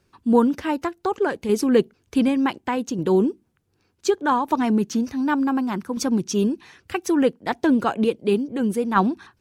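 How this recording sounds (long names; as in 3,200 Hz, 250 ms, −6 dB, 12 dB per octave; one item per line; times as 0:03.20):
tremolo saw down 0.67 Hz, depth 45%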